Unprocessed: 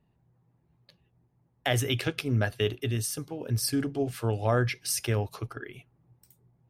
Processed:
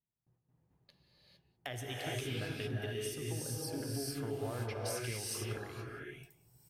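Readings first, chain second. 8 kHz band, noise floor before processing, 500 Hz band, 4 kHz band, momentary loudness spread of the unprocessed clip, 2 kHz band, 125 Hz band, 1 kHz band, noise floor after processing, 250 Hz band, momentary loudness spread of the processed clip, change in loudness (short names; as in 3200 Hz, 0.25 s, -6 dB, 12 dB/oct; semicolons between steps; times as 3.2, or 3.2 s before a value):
-8.0 dB, -71 dBFS, -9.0 dB, -8.5 dB, 10 LU, -9.5 dB, -11.0 dB, -10.5 dB, -81 dBFS, -10.5 dB, 8 LU, -10.0 dB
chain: gate with hold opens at -59 dBFS; compressor 3:1, threshold -36 dBFS, peak gain reduction 12 dB; on a send: echo 0.193 s -22 dB; on the sum: non-linear reverb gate 0.48 s rising, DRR -4 dB; gain -6.5 dB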